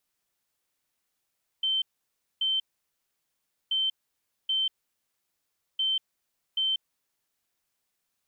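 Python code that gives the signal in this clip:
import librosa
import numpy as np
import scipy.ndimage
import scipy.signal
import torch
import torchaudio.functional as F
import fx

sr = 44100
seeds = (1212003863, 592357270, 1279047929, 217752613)

y = fx.beep_pattern(sr, wave='sine', hz=3100.0, on_s=0.19, off_s=0.59, beeps=2, pause_s=1.11, groups=3, level_db=-23.5)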